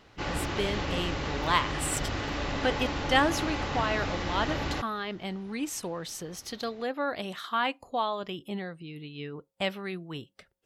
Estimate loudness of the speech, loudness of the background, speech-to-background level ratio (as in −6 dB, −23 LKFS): −32.5 LKFS, −32.5 LKFS, 0.0 dB